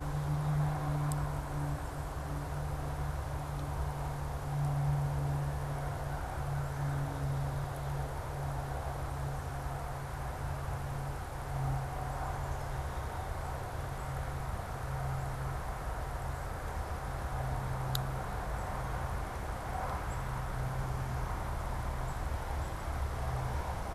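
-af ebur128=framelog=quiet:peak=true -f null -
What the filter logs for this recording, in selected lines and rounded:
Integrated loudness:
  I:         -37.4 LUFS
  Threshold: -47.4 LUFS
Loudness range:
  LRA:         3.1 LU
  Threshold: -57.7 LUFS
  LRA low:   -39.0 LUFS
  LRA high:  -35.8 LUFS
True peak:
  Peak:      -11.8 dBFS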